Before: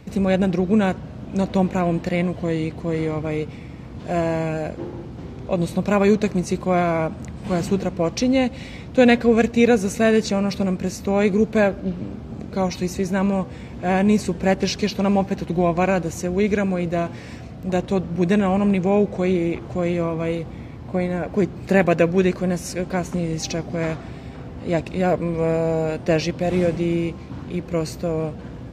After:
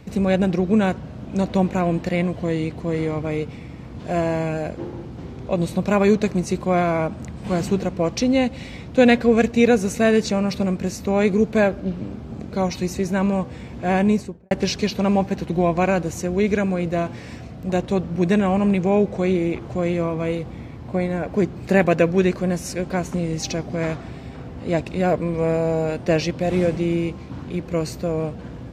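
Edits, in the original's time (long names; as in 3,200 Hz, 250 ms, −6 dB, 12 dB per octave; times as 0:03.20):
0:13.99–0:14.51: fade out and dull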